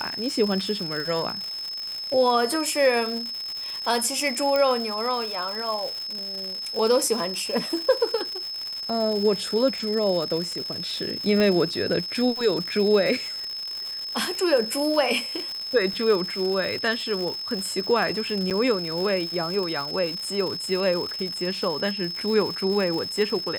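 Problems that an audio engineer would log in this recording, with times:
crackle 240/s -29 dBFS
tone 5200 Hz -30 dBFS
4.56 pop -11 dBFS
11.4 pop -12 dBFS
18.5–18.51 gap 7.8 ms

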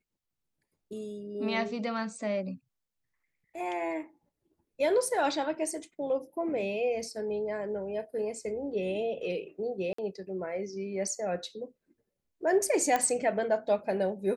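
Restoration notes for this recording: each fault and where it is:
9.93–9.98 gap 54 ms
12.96 pop -14 dBFS

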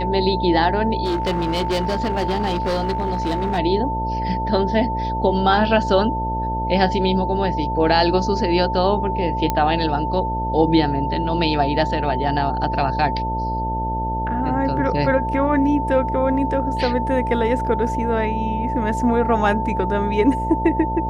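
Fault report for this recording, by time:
buzz 60 Hz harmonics 12 -26 dBFS
tone 890 Hz -23 dBFS
1.04–3.59 clipped -17 dBFS
9.5 pop -6 dBFS

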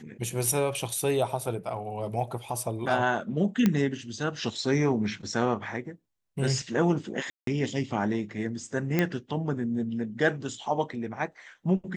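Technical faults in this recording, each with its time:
3.66 pop -10 dBFS
7.3–7.47 gap 0.173 s
8.99 pop -11 dBFS

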